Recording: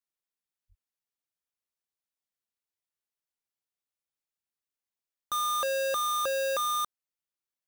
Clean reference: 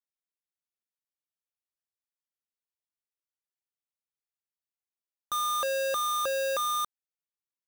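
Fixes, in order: 0.68–0.80 s: high-pass 140 Hz 24 dB/octave

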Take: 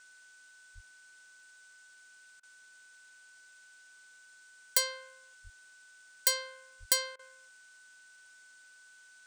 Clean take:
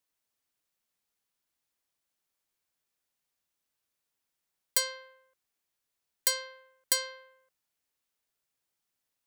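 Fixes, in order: band-stop 1.5 kHz, Q 30; de-plosive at 0.74/5.43/6.79 s; interpolate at 2.40/7.16 s, 30 ms; noise reduction 27 dB, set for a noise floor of -58 dBFS

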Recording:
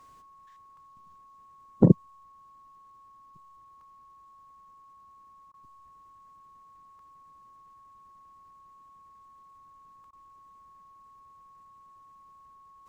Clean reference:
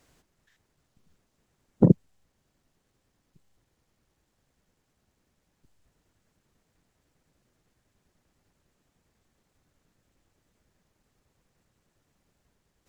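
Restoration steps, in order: band-stop 1.1 kHz, Q 30; interpolate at 0.77/3.81/6.99/10.04 s, 2.5 ms; interpolate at 5.52/10.11 s, 18 ms

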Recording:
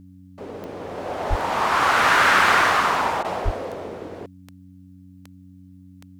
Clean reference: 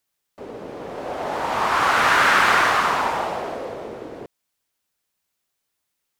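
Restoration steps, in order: de-click; de-hum 92.6 Hz, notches 3; 1.29–1.41 s: high-pass 140 Hz 24 dB/octave; 3.44–3.56 s: high-pass 140 Hz 24 dB/octave; interpolate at 3.23 s, 14 ms

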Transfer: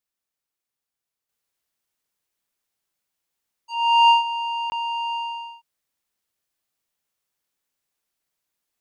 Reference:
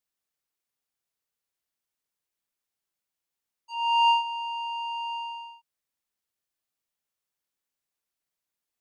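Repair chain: interpolate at 4.70 s, 20 ms; gain correction -6 dB, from 1.29 s

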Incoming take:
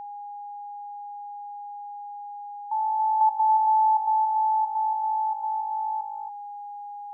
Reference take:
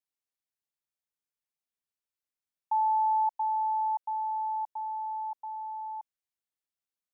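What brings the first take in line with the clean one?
band-stop 820 Hz, Q 30; inverse comb 280 ms -6.5 dB; gain correction -6.5 dB, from 3.21 s

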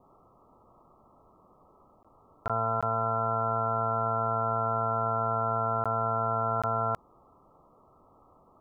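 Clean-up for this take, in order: interpolate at 2.03/2.48/2.81/5.84/6.62 s, 16 ms; noise print and reduce 17 dB

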